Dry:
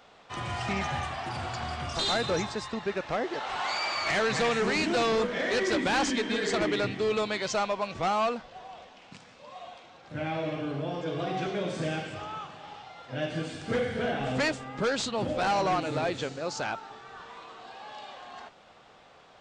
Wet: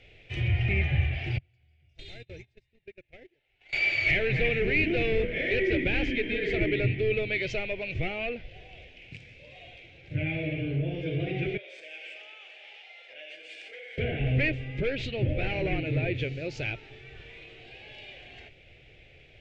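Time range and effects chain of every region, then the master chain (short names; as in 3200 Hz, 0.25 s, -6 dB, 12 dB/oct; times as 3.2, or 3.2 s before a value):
1.38–3.73 notch 1200 Hz, Q 18 + gate -28 dBFS, range -38 dB + compressor 4:1, threshold -45 dBFS
11.57–13.98 compressor 5:1, threshold -37 dBFS + HPF 570 Hz 24 dB/oct
whole clip: RIAA curve playback; treble ducked by the level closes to 2600 Hz, closed at -21.5 dBFS; EQ curve 130 Hz 0 dB, 210 Hz -14 dB, 360 Hz -1 dB, 620 Hz -7 dB, 1100 Hz -27 dB, 2300 Hz +14 dB, 4200 Hz +1 dB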